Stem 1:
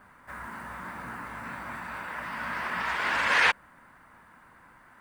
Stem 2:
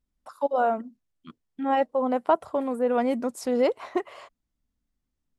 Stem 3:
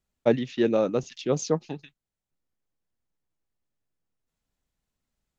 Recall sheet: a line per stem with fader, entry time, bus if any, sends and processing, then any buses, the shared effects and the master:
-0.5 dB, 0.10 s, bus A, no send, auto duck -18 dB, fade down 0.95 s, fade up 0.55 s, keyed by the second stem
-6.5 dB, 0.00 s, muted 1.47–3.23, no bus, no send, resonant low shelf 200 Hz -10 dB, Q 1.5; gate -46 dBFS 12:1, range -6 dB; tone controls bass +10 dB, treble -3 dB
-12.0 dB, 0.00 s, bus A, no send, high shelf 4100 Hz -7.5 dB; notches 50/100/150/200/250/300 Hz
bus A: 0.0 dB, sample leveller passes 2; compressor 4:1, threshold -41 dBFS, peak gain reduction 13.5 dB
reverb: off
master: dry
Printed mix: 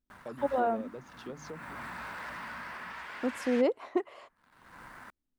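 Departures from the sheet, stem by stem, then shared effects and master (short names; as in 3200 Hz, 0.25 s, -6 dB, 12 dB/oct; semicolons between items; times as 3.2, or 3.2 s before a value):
stem 2: missing gate -46 dBFS 12:1, range -6 dB; stem 3 -12.0 dB -> -18.0 dB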